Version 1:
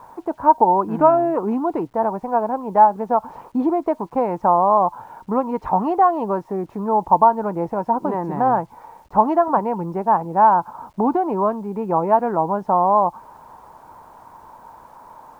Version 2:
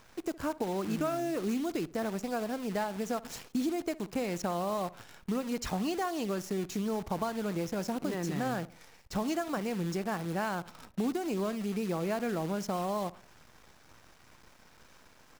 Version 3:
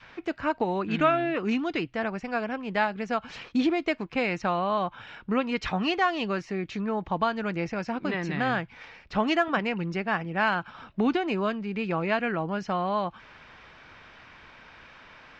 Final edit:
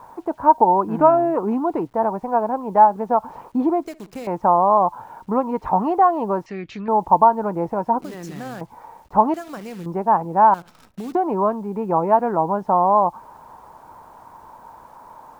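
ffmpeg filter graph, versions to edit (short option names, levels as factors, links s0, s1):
-filter_complex "[1:a]asplit=4[s0][s1][s2][s3];[0:a]asplit=6[s4][s5][s6][s7][s8][s9];[s4]atrim=end=3.852[s10];[s0]atrim=start=3.848:end=4.272[s11];[s5]atrim=start=4.268:end=6.462[s12];[2:a]atrim=start=6.458:end=6.882[s13];[s6]atrim=start=6.878:end=8.012[s14];[s1]atrim=start=8.008:end=8.612[s15];[s7]atrim=start=8.608:end=9.342[s16];[s2]atrim=start=9.338:end=9.862[s17];[s8]atrim=start=9.858:end=10.542[s18];[s3]atrim=start=10.538:end=11.152[s19];[s9]atrim=start=11.148[s20];[s10][s11]acrossfade=d=0.004:c1=hsin:c2=hsin[s21];[s21][s12]acrossfade=d=0.004:c1=hsin:c2=hsin[s22];[s22][s13]acrossfade=d=0.004:c1=hsin:c2=hsin[s23];[s23][s14]acrossfade=d=0.004:c1=hsin:c2=hsin[s24];[s24][s15]acrossfade=d=0.004:c1=hsin:c2=hsin[s25];[s25][s16]acrossfade=d=0.004:c1=hsin:c2=hsin[s26];[s26][s17]acrossfade=d=0.004:c1=hsin:c2=hsin[s27];[s27][s18]acrossfade=d=0.004:c1=hsin:c2=hsin[s28];[s28][s19]acrossfade=d=0.004:c1=hsin:c2=hsin[s29];[s29][s20]acrossfade=d=0.004:c1=hsin:c2=hsin"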